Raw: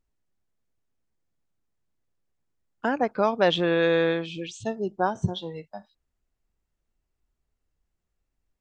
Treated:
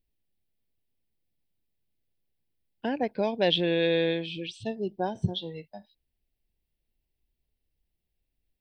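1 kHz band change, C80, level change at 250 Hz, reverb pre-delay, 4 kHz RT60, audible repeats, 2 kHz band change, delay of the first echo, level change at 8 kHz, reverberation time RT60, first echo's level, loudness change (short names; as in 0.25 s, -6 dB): -7.5 dB, none, -2.0 dB, none, none, none, -5.5 dB, none, n/a, none, none, -3.0 dB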